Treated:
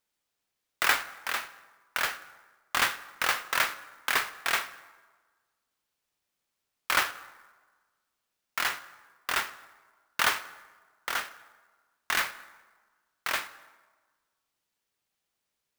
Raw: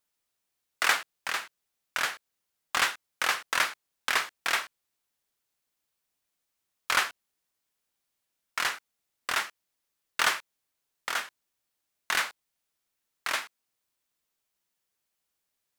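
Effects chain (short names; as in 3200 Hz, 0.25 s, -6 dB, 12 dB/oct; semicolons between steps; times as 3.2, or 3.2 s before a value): plate-style reverb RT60 1.4 s, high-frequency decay 0.6×, DRR 13 dB; clock jitter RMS 0.023 ms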